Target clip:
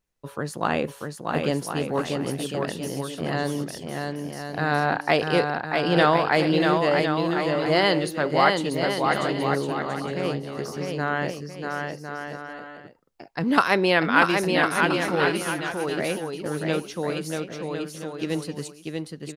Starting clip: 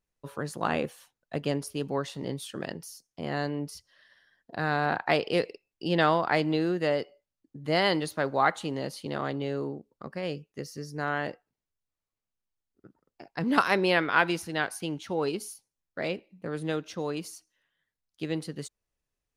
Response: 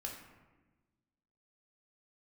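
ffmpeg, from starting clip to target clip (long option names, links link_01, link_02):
-filter_complex "[0:a]asettb=1/sr,asplit=3[link_01][link_02][link_03];[link_01]atrim=end=6.144[link_04];[link_02]atrim=start=6.14:end=6.75,asetpts=PTS-STARTPTS,afade=type=in:duration=0.004:curve=qsin,afade=type=out:start_time=0.606:duration=0.004:curve=qsin,highshelf=frequency=9000:gain=9[link_05];[link_03]atrim=start=6.746[link_06];[link_04][link_05]acrossfade=duration=0.004:curve1=hsin:curve2=qsin[link_07];[link_07][link_06]acrossfade=duration=0.004:curve1=qsin:curve2=hsin,aecho=1:1:640|1056|1326|1502|1616:0.631|0.398|0.251|0.158|0.1,volume=4dB"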